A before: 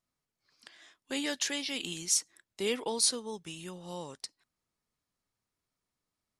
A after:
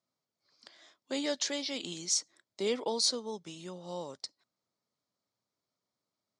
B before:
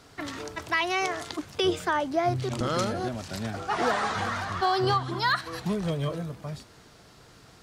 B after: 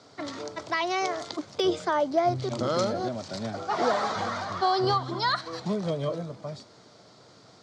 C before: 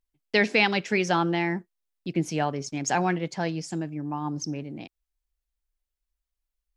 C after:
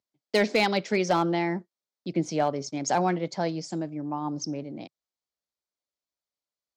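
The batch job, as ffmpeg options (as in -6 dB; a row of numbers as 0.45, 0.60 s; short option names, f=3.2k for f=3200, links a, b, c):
-af "highpass=f=110:w=0.5412,highpass=f=110:w=1.3066,equalizer=f=150:t=q:w=4:g=-4,equalizer=f=590:t=q:w=4:g=6,equalizer=f=1.7k:t=q:w=4:g=-6,equalizer=f=2.7k:t=q:w=4:g=-8,equalizer=f=4.5k:t=q:w=4:g=3,lowpass=f=7.1k:w=0.5412,lowpass=f=7.1k:w=1.3066,asoftclip=type=hard:threshold=-15dB"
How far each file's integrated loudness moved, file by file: -1.0, 0.0, -1.0 LU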